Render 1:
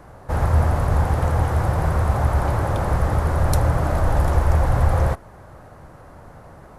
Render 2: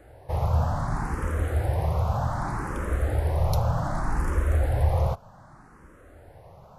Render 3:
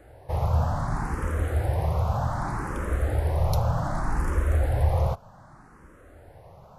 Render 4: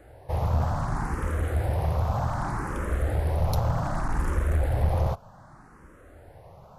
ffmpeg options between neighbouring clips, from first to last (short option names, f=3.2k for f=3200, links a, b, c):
-filter_complex "[0:a]asplit=2[a][b];[b]afreqshift=0.65[c];[a][c]amix=inputs=2:normalize=1,volume=-3.5dB"
-af anull
-af "aeval=exprs='clip(val(0),-1,0.075)':c=same"